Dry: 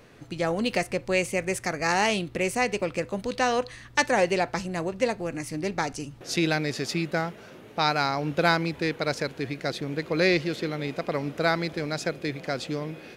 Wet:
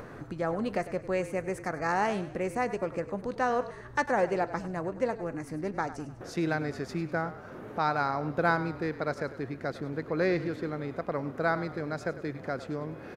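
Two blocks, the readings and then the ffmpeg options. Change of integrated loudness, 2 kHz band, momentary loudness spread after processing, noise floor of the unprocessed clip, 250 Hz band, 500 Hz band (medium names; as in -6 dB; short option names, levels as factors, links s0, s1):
-4.5 dB, -6.0 dB, 8 LU, -47 dBFS, -4.0 dB, -3.5 dB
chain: -filter_complex "[0:a]acompressor=mode=upward:threshold=0.0398:ratio=2.5,highshelf=f=2000:t=q:w=1.5:g=-10,asplit=6[s0][s1][s2][s3][s4][s5];[s1]adelay=100,afreqshift=-34,volume=0.2[s6];[s2]adelay=200,afreqshift=-68,volume=0.0955[s7];[s3]adelay=300,afreqshift=-102,volume=0.0457[s8];[s4]adelay=400,afreqshift=-136,volume=0.0221[s9];[s5]adelay=500,afreqshift=-170,volume=0.0106[s10];[s0][s6][s7][s8][s9][s10]amix=inputs=6:normalize=0,volume=0.596"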